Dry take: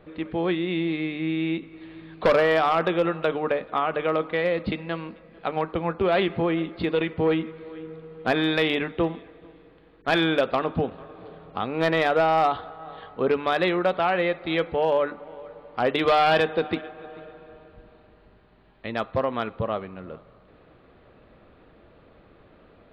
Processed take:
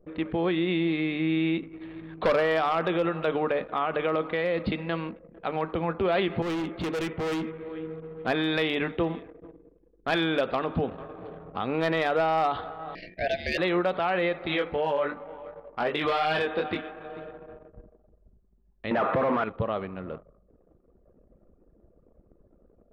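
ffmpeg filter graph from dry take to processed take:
-filter_complex "[0:a]asettb=1/sr,asplit=3[a][b][c];[a]atrim=end=6.424[d];[b]atrim=start=6.42:end=7.69,asetpts=PTS-STARTPTS,afade=t=in:d=0.004:c=qsin,afade=t=out:st=1.266:d=0.004:c=qsin,lowpass=f=3.7k:w=0.5412,lowpass=f=3.7k:w=1.3066,volume=29.5dB,asoftclip=hard,volume=-29.5dB[e];[c]atrim=start=7.686[f];[d][e]acrossfade=d=0.004:c1=hsin:c2=qsin[g];[g][f]acrossfade=d=0.004:c1=qsin:c2=hsin,asettb=1/sr,asplit=3[h][i][j];[h]atrim=end=12.954[k];[i]atrim=start=12.95:end=13.58,asetpts=PTS-STARTPTS,afade=t=in:d=0.004:c=qsin,afade=t=out:st=0.626:d=0.004:c=qsin,highshelf=f=3.3k:g=8.5,aeval=exprs='val(0)*sin(2*PI*1100*n/s)':c=same,asuperstop=centerf=1100:order=12:qfactor=1.1[l];[j]atrim=start=13.576[m];[k][l]acrossfade=d=0.004:c1=hsin:c2=qsin[n];[n][m]acrossfade=d=0.004:c1=qsin:c2=hsin,asettb=1/sr,asplit=3[o][p][q];[o]atrim=end=14.474[r];[p]atrim=start=14.47:end=17.1,asetpts=PTS-STARTPTS,afade=t=in:d=0.004:c=qsin,afade=t=out:st=2.626:d=0.004:c=qsin,equalizer=f=1.8k:t=o:w=2.4:g=3,flanger=delay=19.5:depth=2.6:speed=2.7[s];[q]atrim=start=17.096[t];[r][s]acrossfade=d=0.004:c1=hsin:c2=qsin[u];[u][t]acrossfade=d=0.004:c1=qsin:c2=hsin,asettb=1/sr,asplit=3[v][w][x];[v]atrim=end=18.914[y];[w]atrim=start=18.91:end=19.44,asetpts=PTS-STARTPTS,afade=t=in:d=0.004:c=qsin,afade=t=out:st=0.526:d=0.004:c=qsin,acontrast=76,asplit=2[z][aa];[aa]highpass=f=720:p=1,volume=26dB,asoftclip=type=tanh:threshold=-7.5dB[ab];[z][ab]amix=inputs=2:normalize=0,lowpass=f=1.3k:p=1,volume=-6dB,highpass=140,lowpass=2.3k[ac];[x]atrim=start=19.436[ad];[y][ac]acrossfade=d=0.004:c1=hsin:c2=qsin[ae];[ae][ad]acrossfade=d=0.004:c1=qsin:c2=hsin,anlmdn=0.0251,alimiter=limit=-20dB:level=0:latency=1:release=62,volume=2dB"

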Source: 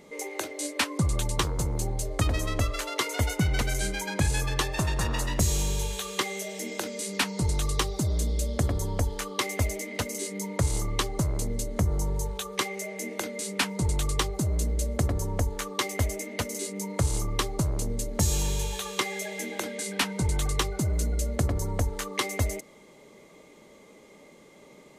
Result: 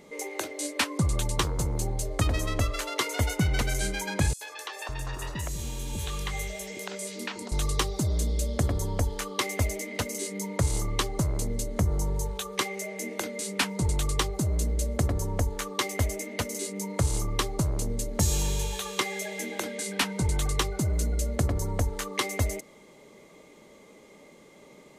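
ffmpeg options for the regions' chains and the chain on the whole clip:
-filter_complex "[0:a]asettb=1/sr,asplit=3[a][b][c];[a]atrim=end=4.334[d];[b]atrim=start=4.33:end=7.52,asetpts=PTS-STARTPTS,afade=t=in:d=0.004:c=qsin,afade=t=out:st=3.186:d=0.004:c=qsin,acompressor=threshold=-29dB:ratio=5:attack=3.2:release=140:knee=1:detection=peak,acrossover=split=440|5300[e][f][g];[f]adelay=80[h];[e]adelay=560[i];[i][h][g]amix=inputs=3:normalize=0,atrim=end_sample=140679[j];[c]atrim=start=7.516[k];[d][j]acrossfade=d=0.004:c1=hsin:c2=qsin[l];[l][k]acrossfade=d=0.004:c1=qsin:c2=hsin"

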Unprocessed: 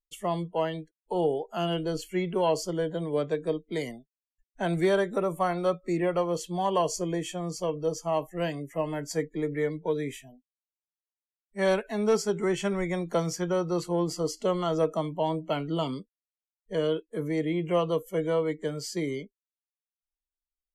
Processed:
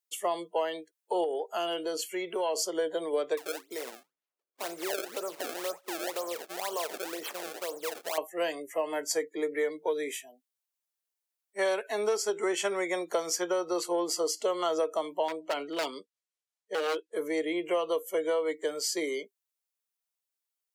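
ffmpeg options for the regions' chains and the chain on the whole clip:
-filter_complex "[0:a]asettb=1/sr,asplit=3[a][b][c];[a]atrim=end=1.244[d];[b]atrim=start=1.24:end=2.75,asetpts=PTS-STARTPTS,afade=t=in:d=0.004:c=qsin,afade=t=out:st=1.506:d=0.004:c=qsin,highpass=54,acompressor=threshold=-30dB:ratio=2.5:attack=3.2:release=140:knee=1:detection=peak[e];[c]atrim=start=2.746[f];[d][e]acrossfade=d=0.004:c1=hsin:c2=qsin[g];[g][f]acrossfade=d=0.004:c1=qsin:c2=hsin,asettb=1/sr,asplit=3[h][i][j];[h]atrim=end=3.374[k];[i]atrim=start=3.37:end=8.18,asetpts=PTS-STARTPTS,afade=t=in:d=0.004:c=qsin,afade=t=out:st=4.806:d=0.004:c=qsin,flanger=delay=1.6:depth=7.8:regen=-82:speed=2:shape=sinusoidal,acompressor=threshold=-35dB:ratio=2.5:attack=3.2:release=140:knee=1:detection=peak,acrusher=samples=26:mix=1:aa=0.000001:lfo=1:lforange=41.6:lforate=2[l];[j]atrim=start=8.176[m];[k][l]acrossfade=d=0.004:c1=hsin:c2=qsin[n];[n][m]acrossfade=d=0.004:c1=qsin:c2=hsin,asettb=1/sr,asplit=3[o][p][q];[o]atrim=end=15.284[r];[p]atrim=start=15.28:end=17.16,asetpts=PTS-STARTPTS,afade=t=in:d=0.004:c=qsin,afade=t=out:st=1.876:d=0.004:c=qsin,lowpass=8.3k,tremolo=f=5.5:d=0.36,aeval=exprs='0.0531*(abs(mod(val(0)/0.0531+3,4)-2)-1)':c=same[s];[q]atrim=start=17.156[t];[r][s]acrossfade=d=0.004:c1=hsin:c2=qsin[u];[u][t]acrossfade=d=0.004:c1=qsin:c2=hsin,highpass=f=370:w=0.5412,highpass=f=370:w=1.3066,acompressor=threshold=-28dB:ratio=6,highshelf=f=5.7k:g=6.5,volume=3dB"

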